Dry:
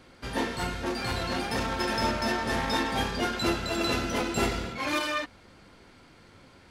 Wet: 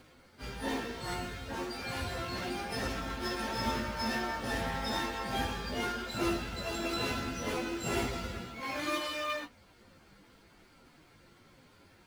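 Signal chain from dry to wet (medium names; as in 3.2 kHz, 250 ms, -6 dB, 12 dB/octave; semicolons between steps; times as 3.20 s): in parallel at -6.5 dB: companded quantiser 4-bit; on the sum: plain phase-vocoder stretch 1.8×; trim -7 dB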